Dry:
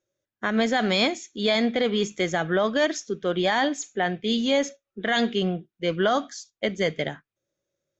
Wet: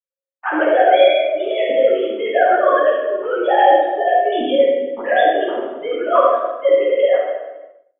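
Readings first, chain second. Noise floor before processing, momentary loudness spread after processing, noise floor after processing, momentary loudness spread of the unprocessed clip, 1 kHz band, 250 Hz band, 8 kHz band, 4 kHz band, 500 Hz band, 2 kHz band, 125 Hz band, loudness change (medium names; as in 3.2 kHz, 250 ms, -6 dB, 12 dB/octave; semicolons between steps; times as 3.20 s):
under -85 dBFS, 11 LU, under -85 dBFS, 8 LU, +13.5 dB, -1.0 dB, no reading, -1.5 dB, +12.0 dB, +5.0 dB, under -20 dB, +9.0 dB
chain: formants replaced by sine waves; compressor with a negative ratio -24 dBFS, ratio -1; simulated room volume 790 m³, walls mixed, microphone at 10 m; expander -35 dBFS; high-order bell 890 Hz +13.5 dB; trim -14 dB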